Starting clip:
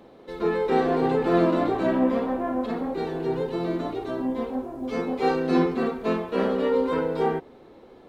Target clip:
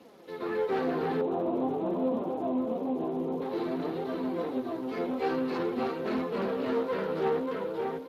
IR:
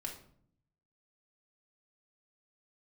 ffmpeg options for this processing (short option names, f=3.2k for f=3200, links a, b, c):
-filter_complex "[0:a]aecho=1:1:586|1172|1758|2344|2930:0.668|0.247|0.0915|0.0339|0.0125,asoftclip=type=tanh:threshold=-22dB,highpass=170,flanger=delay=3.8:depth=9.4:regen=22:speed=0.48:shape=triangular,asettb=1/sr,asplit=3[a][b][c];[a]atrim=end=1.214[d];[b]atrim=start=1.21:end=3.42,asetpts=PTS-STARTPTS,afade=t=in:d=0.004:c=qsin,afade=t=out:st=2.206:d=0.004:c=qsin,lowpass=f=1k:w=0.5412,lowpass=f=1k:w=1.3066[e];[c]atrim=start=3.416[f];[d][e]acrossfade=d=0.004:c1=hsin:c2=qsin[g];[g][f]acrossfade=d=0.004:c1=qsin:c2=hsin,acrusher=bits=9:mix=0:aa=0.000001" -ar 32000 -c:a libspeex -b:a 24k